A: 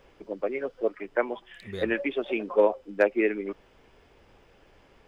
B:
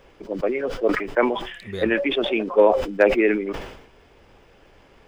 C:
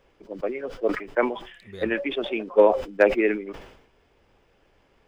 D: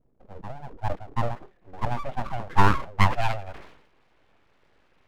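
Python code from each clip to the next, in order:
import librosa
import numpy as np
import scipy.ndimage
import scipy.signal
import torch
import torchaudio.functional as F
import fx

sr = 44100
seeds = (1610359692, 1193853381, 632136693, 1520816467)

y1 = fx.sustainer(x, sr, db_per_s=69.0)
y1 = y1 * 10.0 ** (5.0 / 20.0)
y2 = fx.upward_expand(y1, sr, threshold_db=-30.0, expansion=1.5)
y3 = fx.vibrato(y2, sr, rate_hz=2.2, depth_cents=96.0)
y3 = fx.filter_sweep_lowpass(y3, sr, from_hz=240.0, to_hz=2200.0, start_s=0.33, end_s=3.85, q=1.2)
y3 = np.abs(y3)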